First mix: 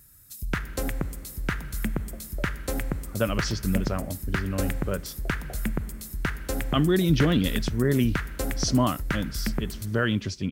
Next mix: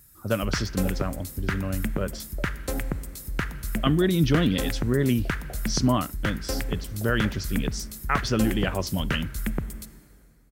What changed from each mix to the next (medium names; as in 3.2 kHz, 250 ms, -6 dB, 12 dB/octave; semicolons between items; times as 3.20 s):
speech: entry -2.90 s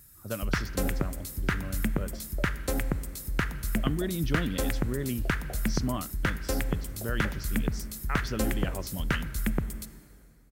speech -9.5 dB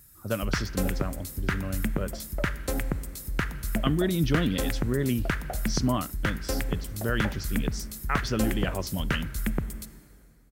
speech +5.5 dB; second sound: remove band-pass filter 410 Hz, Q 2.2